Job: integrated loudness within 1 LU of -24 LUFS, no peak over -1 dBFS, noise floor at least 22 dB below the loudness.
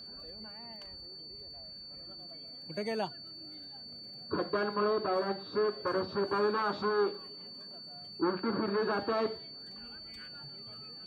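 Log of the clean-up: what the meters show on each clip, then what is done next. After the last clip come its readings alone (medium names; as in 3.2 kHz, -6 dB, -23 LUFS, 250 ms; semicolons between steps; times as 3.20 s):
tick rate 27 per s; steady tone 4.5 kHz; tone level -45 dBFS; loudness -35.5 LUFS; peak level -19.0 dBFS; loudness target -24.0 LUFS
-> de-click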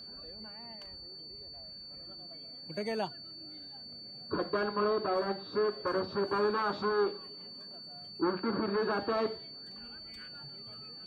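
tick rate 0 per s; steady tone 4.5 kHz; tone level -45 dBFS
-> band-stop 4.5 kHz, Q 30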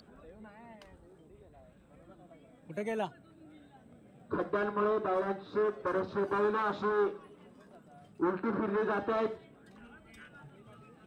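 steady tone not found; loudness -33.0 LUFS; peak level -19.5 dBFS; loudness target -24.0 LUFS
-> trim +9 dB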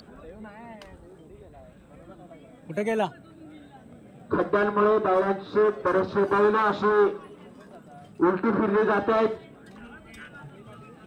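loudness -24.0 LUFS; peak level -10.5 dBFS; noise floor -51 dBFS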